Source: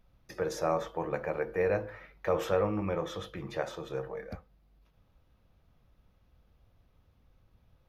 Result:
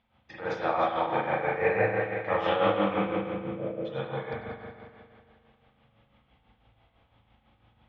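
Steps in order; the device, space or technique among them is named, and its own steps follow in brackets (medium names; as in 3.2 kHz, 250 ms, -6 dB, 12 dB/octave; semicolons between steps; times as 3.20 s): 2.98–3.85 s: steep low-pass 610 Hz 72 dB/octave; combo amplifier with spring reverb and tremolo (spring tank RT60 2.3 s, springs 36/45 ms, chirp 60 ms, DRR -9 dB; tremolo 6 Hz, depth 56%; cabinet simulation 89–4300 Hz, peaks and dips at 160 Hz -8 dB, 400 Hz -9 dB, 580 Hz -4 dB, 820 Hz +6 dB, 2.1 kHz +5 dB, 3.2 kHz +8 dB); peaking EQ 83 Hz -3.5 dB 0.45 oct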